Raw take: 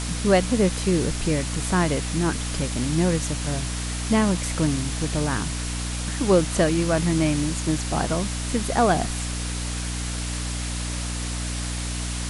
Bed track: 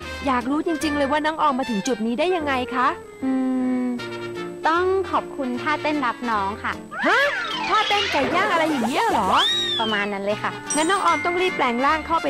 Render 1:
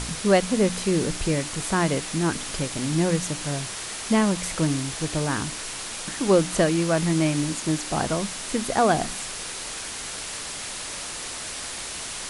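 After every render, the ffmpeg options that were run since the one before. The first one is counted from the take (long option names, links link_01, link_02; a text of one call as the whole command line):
ffmpeg -i in.wav -af "bandreject=frequency=60:width_type=h:width=4,bandreject=frequency=120:width_type=h:width=4,bandreject=frequency=180:width_type=h:width=4,bandreject=frequency=240:width_type=h:width=4,bandreject=frequency=300:width_type=h:width=4" out.wav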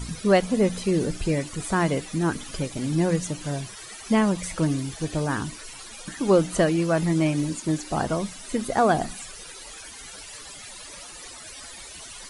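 ffmpeg -i in.wav -af "afftdn=noise_reduction=15:noise_floor=-34" out.wav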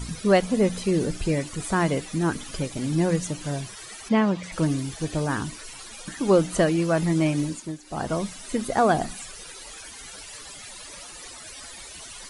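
ffmpeg -i in.wav -filter_complex "[0:a]asplit=3[link_01][link_02][link_03];[link_01]afade=type=out:start_time=4.08:duration=0.02[link_04];[link_02]highpass=110,lowpass=4100,afade=type=in:start_time=4.08:duration=0.02,afade=type=out:start_time=4.51:duration=0.02[link_05];[link_03]afade=type=in:start_time=4.51:duration=0.02[link_06];[link_04][link_05][link_06]amix=inputs=3:normalize=0,asplit=3[link_07][link_08][link_09];[link_07]atrim=end=7.78,asetpts=PTS-STARTPTS,afade=type=out:start_time=7.42:duration=0.36:silence=0.211349[link_10];[link_08]atrim=start=7.78:end=7.81,asetpts=PTS-STARTPTS,volume=-13.5dB[link_11];[link_09]atrim=start=7.81,asetpts=PTS-STARTPTS,afade=type=in:duration=0.36:silence=0.211349[link_12];[link_10][link_11][link_12]concat=n=3:v=0:a=1" out.wav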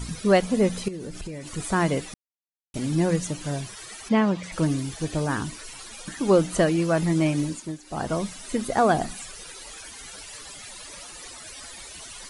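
ffmpeg -i in.wav -filter_complex "[0:a]asettb=1/sr,asplit=3[link_01][link_02][link_03];[link_01]atrim=end=0.884[link_04];[link_02]atrim=start=0.88:end=1.51,asetpts=PTS-STARTPTS,afade=type=in:duration=0.004:curve=qsin,afade=type=out:start_time=0.626:duration=0.004:curve=qsin,acompressor=threshold=-31dB:ratio=12:attack=3.2:release=140:knee=1:detection=peak[link_05];[link_03]atrim=start=1.506[link_06];[link_04][link_05]acrossfade=duration=0.004:curve1=hsin:curve2=qsin[link_07];[link_07][link_06]acrossfade=duration=0.004:curve1=qsin:curve2=hsin,asplit=3[link_08][link_09][link_10];[link_08]atrim=end=2.14,asetpts=PTS-STARTPTS,afade=type=out:start_time=2.136:duration=0.004:curve=hsin[link_11];[link_09]atrim=start=2.14:end=2.74,asetpts=PTS-STARTPTS,volume=0[link_12];[link_10]atrim=start=2.74,asetpts=PTS-STARTPTS,afade=type=in:duration=0.004:curve=hsin[link_13];[link_11][link_12][link_13]concat=n=3:v=0:a=1" out.wav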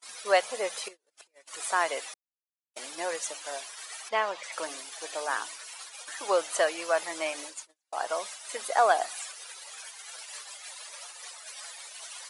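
ffmpeg -i in.wav -af "highpass=frequency=590:width=0.5412,highpass=frequency=590:width=1.3066,agate=range=-36dB:threshold=-41dB:ratio=16:detection=peak" out.wav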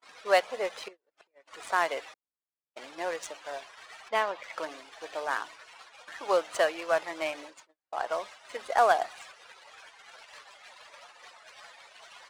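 ffmpeg -i in.wav -af "adynamicsmooth=sensitivity=6:basefreq=2200" out.wav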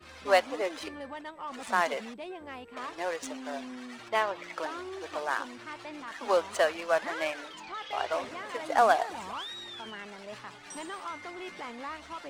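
ffmpeg -i in.wav -i bed.wav -filter_complex "[1:a]volume=-20.5dB[link_01];[0:a][link_01]amix=inputs=2:normalize=0" out.wav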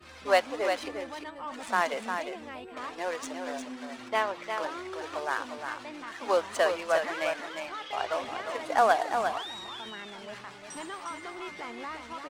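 ffmpeg -i in.wav -af "aecho=1:1:354:0.473" out.wav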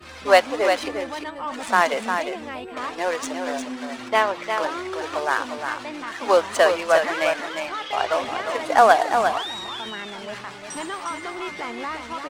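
ffmpeg -i in.wav -af "volume=8.5dB" out.wav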